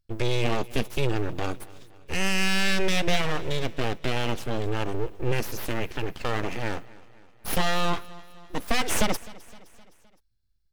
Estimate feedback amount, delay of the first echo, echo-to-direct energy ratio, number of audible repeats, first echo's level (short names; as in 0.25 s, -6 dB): 55%, 0.258 s, -19.5 dB, 3, -21.0 dB